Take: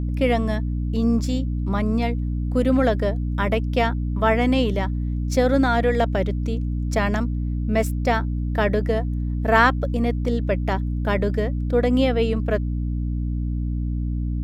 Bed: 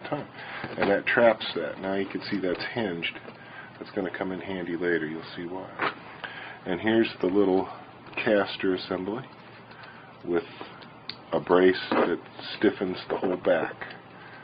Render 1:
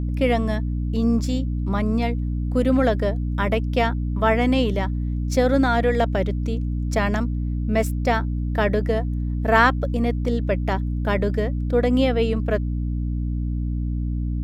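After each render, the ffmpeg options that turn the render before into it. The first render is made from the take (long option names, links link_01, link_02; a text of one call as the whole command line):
ffmpeg -i in.wav -af anull out.wav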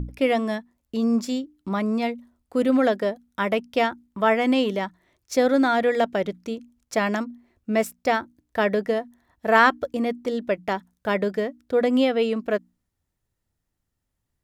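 ffmpeg -i in.wav -af "bandreject=frequency=60:width_type=h:width=6,bandreject=frequency=120:width_type=h:width=6,bandreject=frequency=180:width_type=h:width=6,bandreject=frequency=240:width_type=h:width=6,bandreject=frequency=300:width_type=h:width=6" out.wav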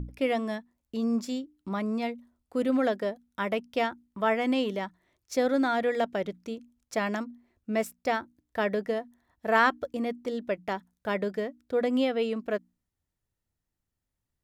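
ffmpeg -i in.wav -af "volume=-6dB" out.wav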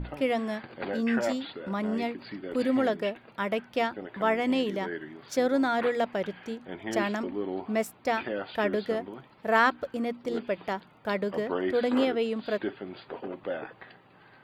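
ffmpeg -i in.wav -i bed.wav -filter_complex "[1:a]volume=-10.5dB[link_01];[0:a][link_01]amix=inputs=2:normalize=0" out.wav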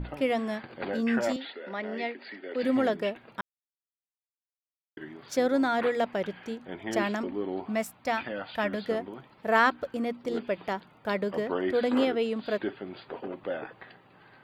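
ffmpeg -i in.wav -filter_complex "[0:a]asettb=1/sr,asplit=3[link_01][link_02][link_03];[link_01]atrim=end=1.364[link_04];[link_02]atrim=start=1.36:end=2.63,asetpts=PTS-STARTPTS,afade=type=in:duration=0.004:curve=qsin,afade=type=out:start_time=1.266:duration=0.004:curve=qsin,highpass=frequency=270:width=0.5412,highpass=frequency=270:width=1.3066,equalizer=frequency=310:width_type=q:width=4:gain=-8,equalizer=frequency=1100:width_type=q:width=4:gain=-9,equalizer=frequency=1900:width_type=q:width=4:gain=7,lowpass=frequency=4900:width=0.5412,lowpass=frequency=4900:width=1.3066[link_05];[link_03]atrim=start=2.626[link_06];[link_04][link_05]acrossfade=duration=0.004:curve1=hsin:curve2=qsin[link_07];[link_07][link_06]acrossfade=duration=0.004:curve1=qsin:curve2=hsin,asettb=1/sr,asplit=3[link_08][link_09][link_10];[link_08]atrim=end=7.694[link_11];[link_09]atrim=start=7.69:end=8.84,asetpts=PTS-STARTPTS,afade=type=in:duration=0.004:curve=qsin,afade=type=out:start_time=1.146:duration=0.004:curve=qsin,equalizer=frequency=390:width=2.8:gain=-11[link_12];[link_10]atrim=start=8.836[link_13];[link_11][link_12]acrossfade=duration=0.004:curve1=hsin:curve2=qsin[link_14];[link_14][link_13]acrossfade=duration=0.004:curve1=qsin:curve2=hsin,asplit=3[link_15][link_16][link_17];[link_15]atrim=end=3.41,asetpts=PTS-STARTPTS,afade=type=out:start_time=3.406:duration=0.004:curve=hsin[link_18];[link_16]atrim=start=3.41:end=4.97,asetpts=PTS-STARTPTS,volume=0[link_19];[link_17]atrim=start=4.97,asetpts=PTS-STARTPTS,afade=type=in:duration=0.004:curve=hsin[link_20];[link_18][link_19][link_20]concat=n=3:v=0:a=1" out.wav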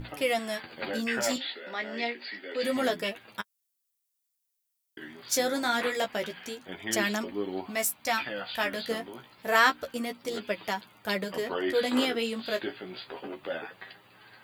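ffmpeg -i in.wav -af "flanger=delay=9.3:depth=8.1:regen=18:speed=0.28:shape=sinusoidal,crystalizer=i=6.5:c=0" out.wav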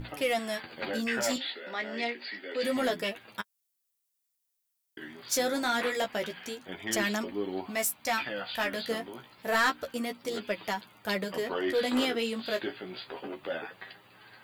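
ffmpeg -i in.wav -af "asoftclip=type=tanh:threshold=-19dB" out.wav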